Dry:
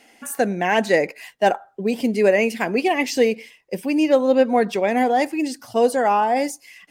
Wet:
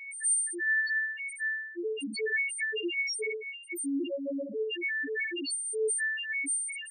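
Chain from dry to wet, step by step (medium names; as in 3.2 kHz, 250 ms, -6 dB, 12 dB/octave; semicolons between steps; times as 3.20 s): partials quantised in pitch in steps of 4 st; FFT filter 210 Hz 0 dB, 370 Hz +11 dB, 1.1 kHz -18 dB, 1.8 kHz +14 dB, 9.2 kHz +11 dB; compression 3:1, threshold -28 dBFS, peak gain reduction 19 dB; on a send: flutter echo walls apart 11 m, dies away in 0.88 s; on the sum: loudest bins only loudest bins 1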